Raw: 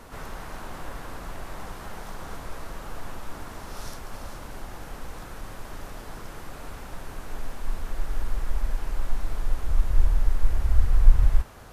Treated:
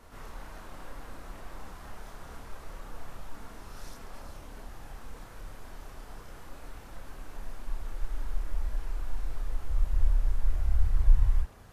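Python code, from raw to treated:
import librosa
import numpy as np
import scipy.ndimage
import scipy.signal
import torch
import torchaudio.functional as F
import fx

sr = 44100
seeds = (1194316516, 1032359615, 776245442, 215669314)

y = fx.chorus_voices(x, sr, voices=4, hz=0.9, base_ms=30, depth_ms=2.3, mix_pct=45)
y = y * 10.0 ** (-5.0 / 20.0)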